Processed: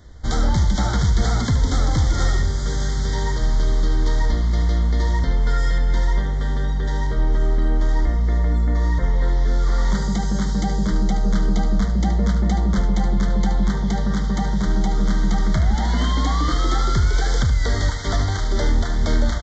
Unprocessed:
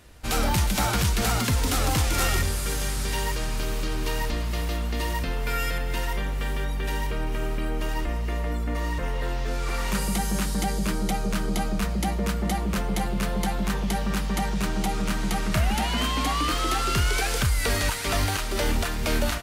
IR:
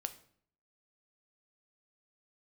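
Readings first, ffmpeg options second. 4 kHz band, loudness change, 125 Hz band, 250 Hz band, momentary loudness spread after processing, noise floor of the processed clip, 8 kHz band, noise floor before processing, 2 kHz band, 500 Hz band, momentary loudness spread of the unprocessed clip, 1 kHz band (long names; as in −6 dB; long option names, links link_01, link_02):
−2.0 dB, +5.5 dB, +7.5 dB, +5.0 dB, 3 LU, −22 dBFS, −4.0 dB, −27 dBFS, −1.5 dB, +1.5 dB, 6 LU, +0.5 dB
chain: -filter_complex "[0:a]lowshelf=frequency=210:gain=10,alimiter=limit=-10.5dB:level=0:latency=1:release=209,asplit=2[link_01][link_02];[1:a]atrim=start_sample=2205,adelay=74[link_03];[link_02][link_03]afir=irnorm=-1:irlink=0,volume=-7.5dB[link_04];[link_01][link_04]amix=inputs=2:normalize=0,aresample=16000,aresample=44100,asuperstop=centerf=2600:order=12:qfactor=2.8"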